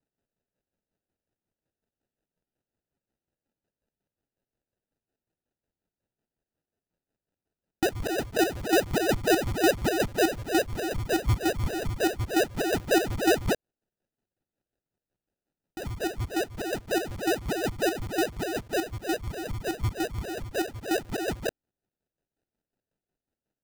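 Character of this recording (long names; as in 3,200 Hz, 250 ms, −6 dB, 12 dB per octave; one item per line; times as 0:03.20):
phaser sweep stages 8, 0.24 Hz, lowest notch 720–1,600 Hz
aliases and images of a low sample rate 1,100 Hz, jitter 0%
chopped level 5.5 Hz, depth 60%, duty 40%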